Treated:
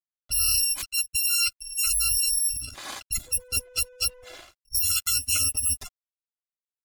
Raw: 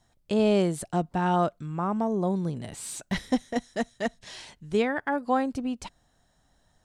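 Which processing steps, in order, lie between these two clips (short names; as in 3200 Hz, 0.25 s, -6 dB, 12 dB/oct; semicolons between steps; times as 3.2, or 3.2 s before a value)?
FFT order left unsorted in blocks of 256 samples; 3.26–4.34 whine 500 Hz -50 dBFS; spectral gate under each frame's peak -20 dB strong; in parallel at -1 dB: negative-ratio compressor -28 dBFS, ratio -0.5; on the sum: low-pass opened by the level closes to 2400 Hz, open at -21.5 dBFS; crossover distortion -52 dBFS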